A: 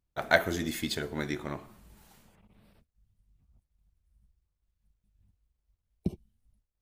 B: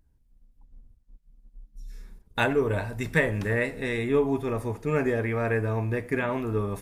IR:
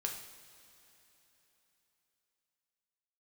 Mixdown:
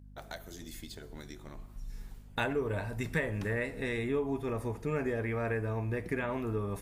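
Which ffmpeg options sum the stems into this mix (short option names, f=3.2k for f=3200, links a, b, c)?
-filter_complex "[0:a]acrossover=split=1500|3600[a][b][c];[a]acompressor=threshold=-41dB:ratio=4[d];[b]acompressor=threshold=-57dB:ratio=4[e];[c]acompressor=threshold=-43dB:ratio=4[f];[d][e][f]amix=inputs=3:normalize=0,volume=-5dB[g];[1:a]acompressor=threshold=-31dB:ratio=2,aeval=exprs='val(0)+0.00355*(sin(2*PI*50*n/s)+sin(2*PI*2*50*n/s)/2+sin(2*PI*3*50*n/s)/3+sin(2*PI*4*50*n/s)/4+sin(2*PI*5*50*n/s)/5)':c=same,volume=-2dB[h];[g][h]amix=inputs=2:normalize=0"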